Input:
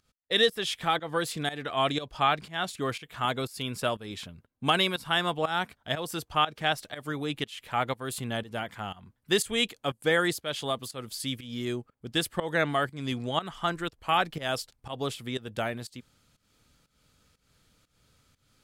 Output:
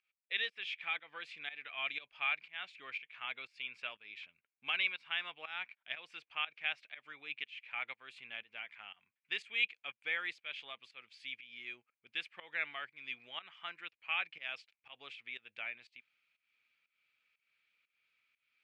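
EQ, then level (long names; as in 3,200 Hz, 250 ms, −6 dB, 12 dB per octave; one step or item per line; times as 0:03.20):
resonant band-pass 2,400 Hz, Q 7.1
high-frequency loss of the air 99 metres
+4.0 dB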